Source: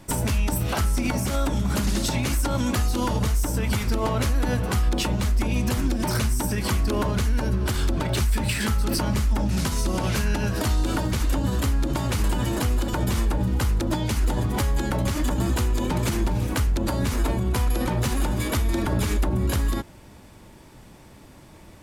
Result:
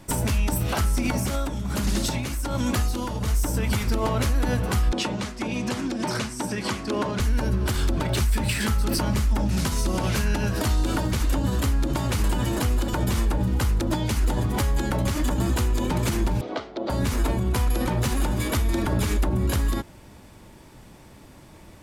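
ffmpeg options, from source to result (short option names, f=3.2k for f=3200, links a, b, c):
-filter_complex "[0:a]asettb=1/sr,asplit=3[a][b][c];[a]atrim=end=1.194[d];[b]atrim=start=1.19:end=3.28,asetpts=PTS-STARTPTS,afade=t=in:d=0.004:c=qsin,afade=t=out:st=2.086:d=0.004:c=qsin,tremolo=f=1.3:d=0.48[e];[c]atrim=start=3.276[f];[d][e]acrossfade=d=0.004:c1=hsin:c2=qsin[g];[g][f]acrossfade=d=0.004:c1=qsin:c2=hsin,asettb=1/sr,asplit=3[h][i][j];[h]atrim=end=4.924[k];[i]atrim=start=4.92:end=7.2,asetpts=PTS-STARTPTS,afade=t=in:d=0.004:c=qsin,afade=t=out:st=2.276:d=0.004:c=qsin,highpass=170,lowpass=7.4k[l];[j]atrim=start=7.196[m];[k][l]acrossfade=d=0.004:c1=hsin:c2=qsin[n];[n][m]acrossfade=d=0.004:c1=qsin:c2=hsin,asettb=1/sr,asplit=3[o][p][q];[o]atrim=end=16.414[r];[p]atrim=start=16.41:end=16.9,asetpts=PTS-STARTPTS,afade=t=in:d=0.004:c=qsin,afade=t=out:st=0.486:d=0.004:c=qsin,highpass=380,equalizer=f=390:t=q:w=4:g=6,equalizer=f=660:t=q:w=4:g=9,equalizer=f=970:t=q:w=4:g=-4,equalizer=f=1.7k:t=q:w=4:g=-8,equalizer=f=2.6k:t=q:w=4:g=-9,lowpass=f=4.1k:w=0.5412,lowpass=f=4.1k:w=1.3066[s];[q]atrim=start=16.896[t];[r][s]acrossfade=d=0.004:c1=hsin:c2=qsin[u];[u][t]acrossfade=d=0.004:c1=qsin:c2=hsin"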